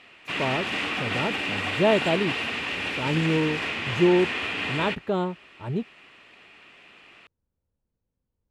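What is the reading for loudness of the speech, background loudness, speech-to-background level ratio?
-26.5 LUFS, -27.5 LUFS, 1.0 dB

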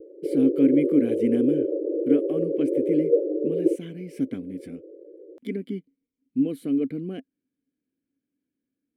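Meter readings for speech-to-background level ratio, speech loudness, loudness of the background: -1.0 dB, -26.5 LUFS, -25.5 LUFS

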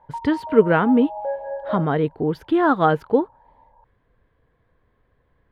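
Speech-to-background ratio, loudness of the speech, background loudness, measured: 11.5 dB, -20.0 LUFS, -31.5 LUFS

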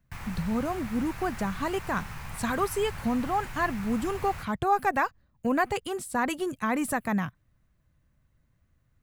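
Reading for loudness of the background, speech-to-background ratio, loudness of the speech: -40.5 LUFS, 11.0 dB, -29.5 LUFS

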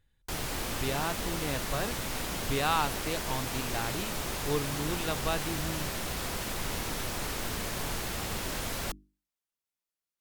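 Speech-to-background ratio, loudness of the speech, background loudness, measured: -1.0 dB, -35.0 LUFS, -34.0 LUFS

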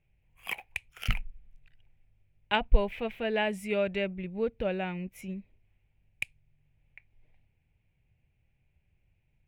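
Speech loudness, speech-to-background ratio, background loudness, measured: -33.0 LUFS, 6.5 dB, -39.5 LUFS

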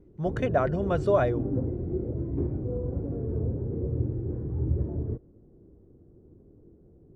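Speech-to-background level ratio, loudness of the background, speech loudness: 4.5 dB, -31.5 LUFS, -27.0 LUFS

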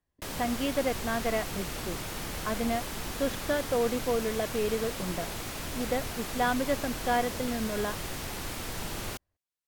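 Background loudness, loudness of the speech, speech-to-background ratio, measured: -36.0 LUFS, -32.0 LUFS, 4.0 dB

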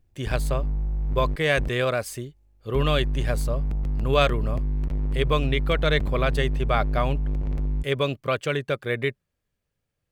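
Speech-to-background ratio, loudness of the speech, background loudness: 2.5 dB, -26.5 LUFS, -29.0 LUFS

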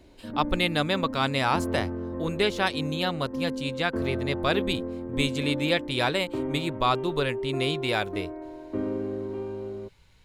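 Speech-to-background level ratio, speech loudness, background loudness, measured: 5.5 dB, -28.0 LUFS, -33.5 LUFS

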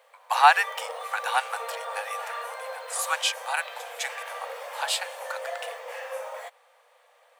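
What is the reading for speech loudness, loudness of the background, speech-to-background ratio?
-26.5 LUFS, -36.5 LUFS, 10.0 dB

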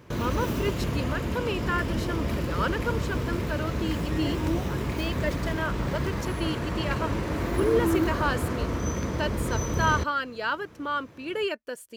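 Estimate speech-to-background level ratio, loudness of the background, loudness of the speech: -2.0 dB, -29.5 LUFS, -31.5 LUFS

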